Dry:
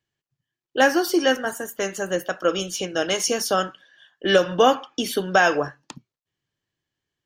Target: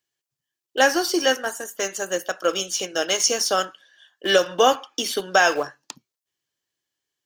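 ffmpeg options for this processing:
-filter_complex "[0:a]acrossover=split=7100[a][b];[b]acompressor=threshold=-45dB:ratio=4:attack=1:release=60[c];[a][c]amix=inputs=2:normalize=0,bass=f=250:g=-12,treble=f=4k:g=9,asplit=2[d][e];[e]aeval=exprs='val(0)*gte(abs(val(0)),0.0668)':c=same,volume=-11dB[f];[d][f]amix=inputs=2:normalize=0,volume=-2dB"

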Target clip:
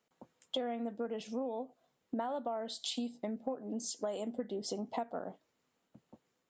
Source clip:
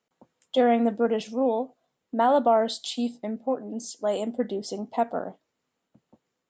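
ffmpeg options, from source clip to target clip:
-af "acompressor=threshold=-34dB:ratio=12"

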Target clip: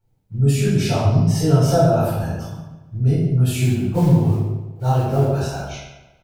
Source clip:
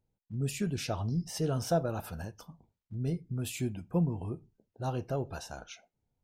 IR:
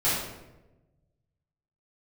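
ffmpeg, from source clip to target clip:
-filter_complex "[0:a]asettb=1/sr,asplit=3[a][b][c];[a]atrim=end=3.604[d];[b]atrim=start=3.6:end=5.62,asetpts=PTS-STARTPTS,afade=t=in:d=0.004:c=qsin,afade=t=out:st=2.016:d=0.004:c=qsin,acrusher=bits=6:mode=log:mix=0:aa=0.000001[e];[c]atrim=start=5.616[f];[d][e]acrossfade=d=0.004:c1=hsin:c2=qsin[g];[g][f]acrossfade=d=0.004:c1=qsin:c2=hsin,asplit=2[h][i];[i]adelay=144,lowpass=f=4.5k:p=1,volume=-11.5dB,asplit=2[j][k];[k]adelay=144,lowpass=f=4.5k:p=1,volume=0.45,asplit=2[l][m];[m]adelay=144,lowpass=f=4.5k:p=1,volume=0.45,asplit=2[n][o];[o]adelay=144,lowpass=f=4.5k:p=1,volume=0.45,asplit=2[p][q];[q]adelay=144,lowpass=f=4.5k:p=1,volume=0.45[r];[h][j][l][n][p][r]amix=inputs=6:normalize=0[s];[1:a]atrim=start_sample=2205,afade=t=out:st=0.32:d=0.01,atrim=end_sample=14553[t];[s][t]afir=irnorm=-1:irlink=0"

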